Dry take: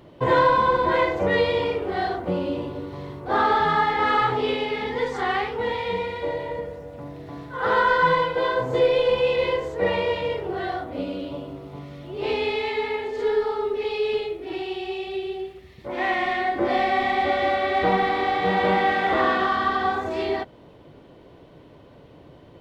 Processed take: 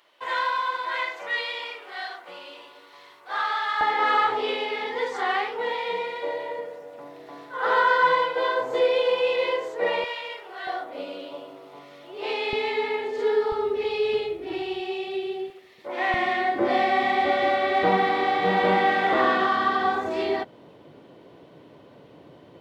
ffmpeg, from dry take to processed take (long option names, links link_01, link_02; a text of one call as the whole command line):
ffmpeg -i in.wav -af "asetnsamples=nb_out_samples=441:pad=0,asendcmd='3.81 highpass f 450;10.04 highpass f 1100;10.67 highpass f 520;12.53 highpass f 190;13.52 highpass f 74;14.8 highpass f 180;15.5 highpass f 410;16.14 highpass f 150',highpass=1400" out.wav